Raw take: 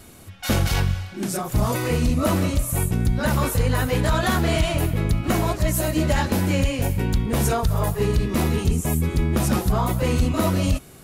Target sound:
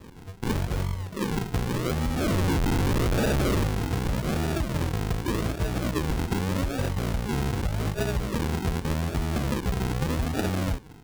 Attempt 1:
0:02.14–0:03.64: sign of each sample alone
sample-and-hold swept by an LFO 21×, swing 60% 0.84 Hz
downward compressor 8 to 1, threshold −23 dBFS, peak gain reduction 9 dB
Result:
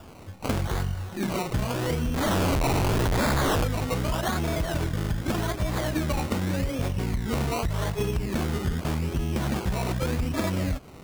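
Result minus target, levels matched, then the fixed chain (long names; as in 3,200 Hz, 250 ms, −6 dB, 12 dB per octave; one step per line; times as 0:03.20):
sample-and-hold swept by an LFO: distortion −6 dB
0:02.14–0:03.64: sign of each sample alone
sample-and-hold swept by an LFO 59×, swing 60% 0.84 Hz
downward compressor 8 to 1, threshold −23 dBFS, peak gain reduction 9 dB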